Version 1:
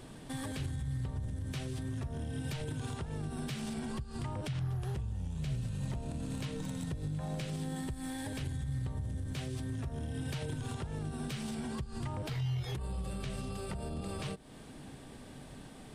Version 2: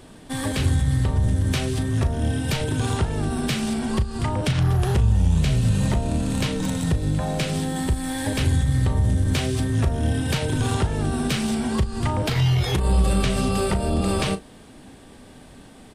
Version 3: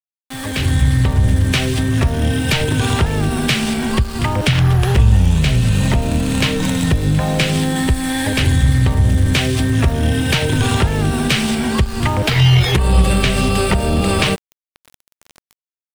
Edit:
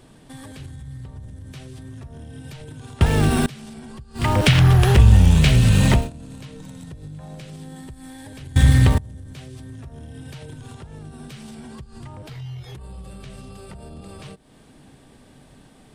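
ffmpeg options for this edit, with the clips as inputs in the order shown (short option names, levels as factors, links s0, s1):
-filter_complex "[2:a]asplit=3[s0][s1][s2];[0:a]asplit=4[s3][s4][s5][s6];[s3]atrim=end=3.012[s7];[s0]atrim=start=3.008:end=3.462[s8];[s4]atrim=start=3.458:end=4.3[s9];[s1]atrim=start=4.14:end=6.1[s10];[s5]atrim=start=5.94:end=8.562[s11];[s2]atrim=start=8.558:end=8.982[s12];[s6]atrim=start=8.978[s13];[s7][s8]acrossfade=d=0.004:c1=hsin:c2=hsin[s14];[s14][s9]acrossfade=d=0.004:c1=hsin:c2=hsin[s15];[s15][s10]acrossfade=d=0.16:c1=tri:c2=tri[s16];[s16][s11]acrossfade=d=0.16:c1=tri:c2=tri[s17];[s17][s12]acrossfade=d=0.004:c1=hsin:c2=hsin[s18];[s18][s13]acrossfade=d=0.004:c1=hsin:c2=hsin"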